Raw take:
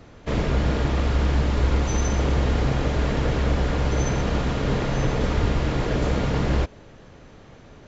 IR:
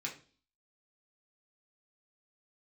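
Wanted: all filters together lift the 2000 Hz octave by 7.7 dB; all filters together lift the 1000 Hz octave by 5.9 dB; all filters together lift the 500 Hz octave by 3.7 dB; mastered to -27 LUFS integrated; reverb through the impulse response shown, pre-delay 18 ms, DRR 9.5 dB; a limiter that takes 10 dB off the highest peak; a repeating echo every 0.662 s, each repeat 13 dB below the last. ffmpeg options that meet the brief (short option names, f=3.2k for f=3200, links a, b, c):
-filter_complex "[0:a]equalizer=f=500:t=o:g=3,equalizer=f=1k:t=o:g=4.5,equalizer=f=2k:t=o:g=8,alimiter=limit=-17dB:level=0:latency=1,aecho=1:1:662|1324|1986:0.224|0.0493|0.0108,asplit=2[a][b];[1:a]atrim=start_sample=2205,adelay=18[c];[b][c]afir=irnorm=-1:irlink=0,volume=-10.5dB[d];[a][d]amix=inputs=2:normalize=0,volume=-1dB"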